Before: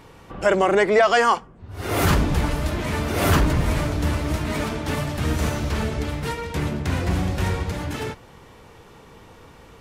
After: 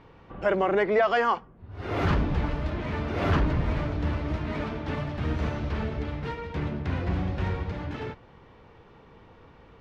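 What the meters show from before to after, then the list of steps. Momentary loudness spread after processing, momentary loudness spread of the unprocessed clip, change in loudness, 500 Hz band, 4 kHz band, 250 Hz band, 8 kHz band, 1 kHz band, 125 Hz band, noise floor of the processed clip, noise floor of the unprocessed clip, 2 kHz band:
11 LU, 11 LU, −6.0 dB, −5.5 dB, −10.5 dB, −5.5 dB, below −20 dB, −6.0 dB, −5.0 dB, −53 dBFS, −47 dBFS, −7.0 dB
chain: high-frequency loss of the air 240 metres
level −5 dB

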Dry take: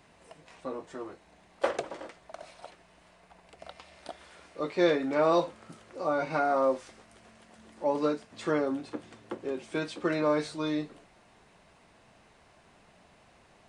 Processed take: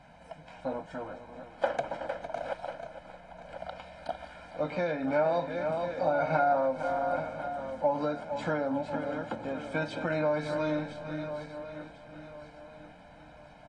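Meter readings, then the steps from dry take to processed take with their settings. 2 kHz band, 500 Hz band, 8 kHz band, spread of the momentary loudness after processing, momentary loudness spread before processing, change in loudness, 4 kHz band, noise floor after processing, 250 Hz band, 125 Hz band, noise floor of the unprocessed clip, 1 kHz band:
+1.5 dB, 0.0 dB, can't be measured, 20 LU, 22 LU, −2.0 dB, −4.5 dB, −53 dBFS, −2.5 dB, +4.0 dB, −61 dBFS, +2.0 dB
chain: feedback delay that plays each chunk backwards 521 ms, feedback 58%, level −12.5 dB
parametric band 88 Hz −11.5 dB 0.24 octaves
hum removal 106.3 Hz, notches 4
on a send: single-tap delay 455 ms −13 dB
on the sum: downward compressor 10 to 1, threshold −28 dBFS, peak gain reduction 10.5 dB
low-pass filter 1,600 Hz 6 dB per octave
comb filter 1.3 ms, depth 98%
level +3.5 dB
AAC 32 kbit/s 24,000 Hz

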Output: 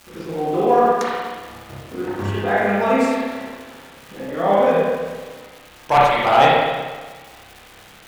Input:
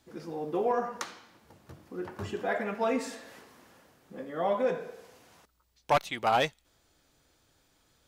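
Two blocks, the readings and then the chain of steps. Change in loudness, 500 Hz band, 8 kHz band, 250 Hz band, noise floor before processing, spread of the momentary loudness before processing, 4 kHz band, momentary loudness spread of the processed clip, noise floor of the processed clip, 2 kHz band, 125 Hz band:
+13.0 dB, +13.0 dB, +7.0 dB, +13.5 dB, −70 dBFS, 17 LU, +11.5 dB, 20 LU, −45 dBFS, +13.5 dB, +15.0 dB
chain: surface crackle 550 per second −40 dBFS
spring reverb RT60 1.4 s, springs 30/59 ms, chirp 35 ms, DRR −7.5 dB
level +5.5 dB

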